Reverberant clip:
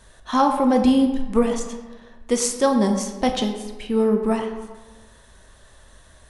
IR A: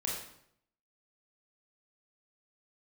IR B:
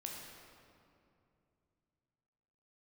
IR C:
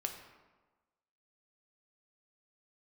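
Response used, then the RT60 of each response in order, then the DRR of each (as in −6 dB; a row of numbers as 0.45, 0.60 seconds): C; 0.70, 2.6, 1.3 seconds; −3.5, −1.0, 3.0 decibels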